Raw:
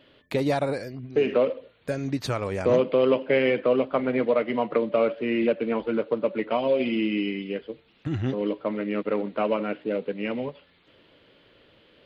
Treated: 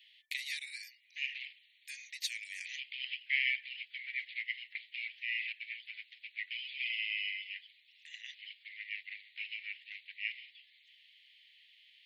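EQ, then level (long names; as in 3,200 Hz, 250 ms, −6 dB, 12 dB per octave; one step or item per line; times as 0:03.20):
Butterworth high-pass 1,900 Hz 96 dB per octave
notch filter 4,800 Hz, Q 27
0.0 dB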